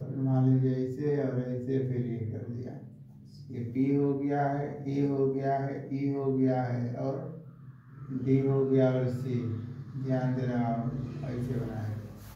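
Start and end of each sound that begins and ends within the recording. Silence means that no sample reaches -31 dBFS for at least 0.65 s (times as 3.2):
3.55–7.26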